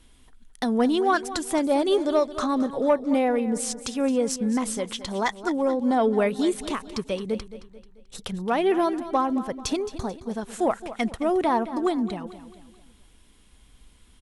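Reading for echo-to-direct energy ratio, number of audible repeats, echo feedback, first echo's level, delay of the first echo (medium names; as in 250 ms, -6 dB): -13.0 dB, 3, 44%, -14.0 dB, 219 ms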